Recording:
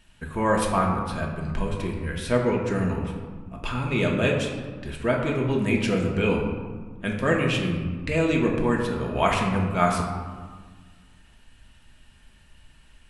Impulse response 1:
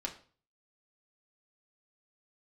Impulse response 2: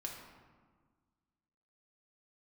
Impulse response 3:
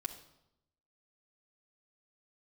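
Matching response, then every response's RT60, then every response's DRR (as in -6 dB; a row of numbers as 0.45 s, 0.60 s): 2; 0.40 s, 1.5 s, 0.85 s; -1.0 dB, -1.0 dB, 1.0 dB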